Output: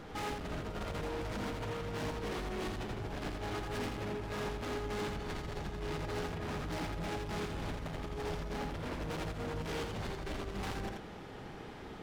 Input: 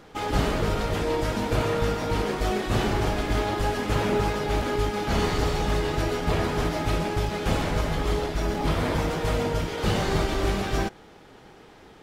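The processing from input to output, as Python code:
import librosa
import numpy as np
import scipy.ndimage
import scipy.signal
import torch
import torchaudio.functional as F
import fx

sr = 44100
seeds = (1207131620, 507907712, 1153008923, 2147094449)

p1 = fx.bass_treble(x, sr, bass_db=4, treble_db=-4)
p2 = fx.over_compress(p1, sr, threshold_db=-27.0, ratio=-0.5)
p3 = np.clip(p2, -10.0 ** (-32.5 / 20.0), 10.0 ** (-32.5 / 20.0))
p4 = p3 + fx.echo_single(p3, sr, ms=84, db=-4.0, dry=0)
y = F.gain(torch.from_numpy(p4), -5.0).numpy()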